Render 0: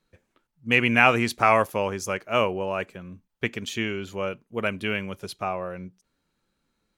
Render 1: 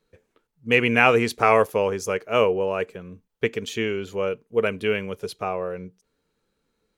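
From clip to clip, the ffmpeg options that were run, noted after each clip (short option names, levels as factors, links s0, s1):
-af "equalizer=f=450:t=o:w=0.29:g=12.5"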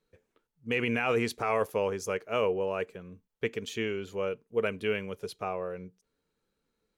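-af "alimiter=limit=0.282:level=0:latency=1:release=13,volume=0.473"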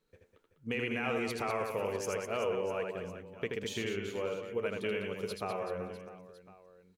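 -filter_complex "[0:a]acompressor=threshold=0.0178:ratio=2.5,asplit=2[s0][s1];[s1]aecho=0:1:80|200|380|650|1055:0.631|0.398|0.251|0.158|0.1[s2];[s0][s2]amix=inputs=2:normalize=0"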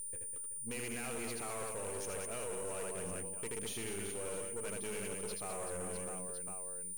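-af "areverse,acompressor=threshold=0.00708:ratio=5,areverse,aeval=exprs='val(0)+0.00447*sin(2*PI*9200*n/s)':c=same,aeval=exprs='(tanh(251*val(0)+0.7)-tanh(0.7))/251':c=same,volume=3.16"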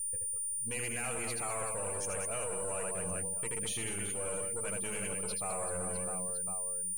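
-af "aeval=exprs='if(lt(val(0),0),0.708*val(0),val(0))':c=same,equalizer=f=250:t=o:w=0.33:g=-9,equalizer=f=400:t=o:w=0.33:g=-10,equalizer=f=8000:t=o:w=0.33:g=4,afftdn=nr=14:nf=-55,volume=2.51"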